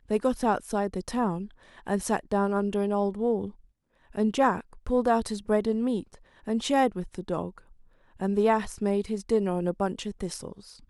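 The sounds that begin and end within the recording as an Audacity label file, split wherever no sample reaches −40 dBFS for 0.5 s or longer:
4.150000	7.580000	sound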